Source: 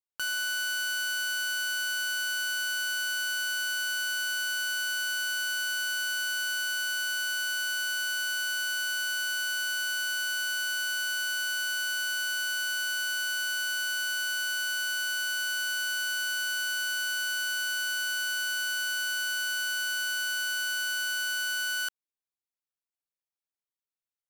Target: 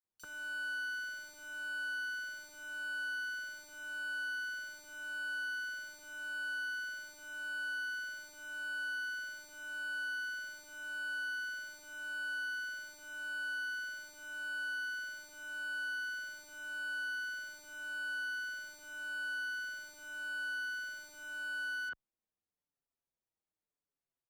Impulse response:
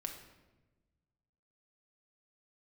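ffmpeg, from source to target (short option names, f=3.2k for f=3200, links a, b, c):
-filter_complex "[0:a]asoftclip=type=tanh:threshold=-32.5dB,alimiter=level_in=12dB:limit=-24dB:level=0:latency=1,volume=-12dB,tiltshelf=f=970:g=6.5,acrossover=split=3400[a][b];[a]adelay=40[c];[c][b]amix=inputs=2:normalize=0,asoftclip=type=hard:threshold=-38dB,highshelf=f=8.1k:g=-7,asplit=2[d][e];[e]adelay=5.8,afreqshift=-0.86[f];[d][f]amix=inputs=2:normalize=1,volume=4.5dB"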